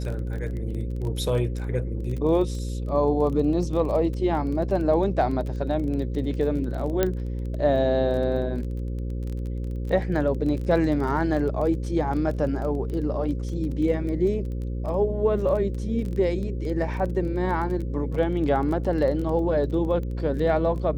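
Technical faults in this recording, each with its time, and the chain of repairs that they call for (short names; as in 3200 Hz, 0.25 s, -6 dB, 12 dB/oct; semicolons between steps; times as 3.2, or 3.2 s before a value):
buzz 60 Hz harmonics 9 -29 dBFS
crackle 20/s -31 dBFS
7.03 pop -8 dBFS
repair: de-click; de-hum 60 Hz, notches 9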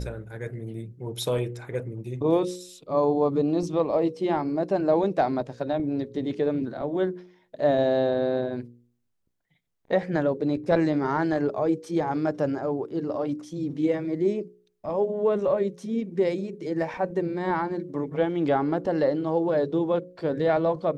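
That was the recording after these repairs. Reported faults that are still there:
none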